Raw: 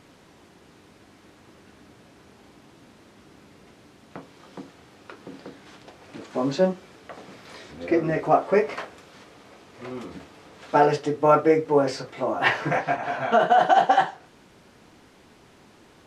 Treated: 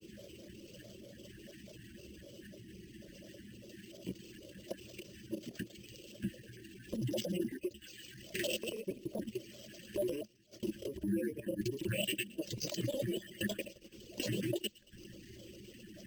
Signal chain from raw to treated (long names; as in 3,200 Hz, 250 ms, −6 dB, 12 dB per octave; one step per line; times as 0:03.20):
slices reordered back to front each 114 ms, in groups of 8
mains-hum notches 50/100/150/200/250 Hz
reverb reduction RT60 1.3 s
Chebyshev band-stop filter 450–2,300 Hz, order 4
high-shelf EQ 7,400 Hz −11.5 dB
downward compressor 4 to 1, threshold −46 dBFS, peak gain reduction 24.5 dB
transient designer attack −3 dB, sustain +1 dB
output level in coarse steps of 17 dB
granular cloud, grains 20 per second, pitch spread up and down by 7 semitones
EQ curve with evenly spaced ripples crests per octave 1.3, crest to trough 11 dB
on a send: delay with a high-pass on its return 114 ms, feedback 57%, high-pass 5,000 Hz, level −12 dB
on the sum: bad sample-rate conversion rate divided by 4×, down none, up hold
level +15 dB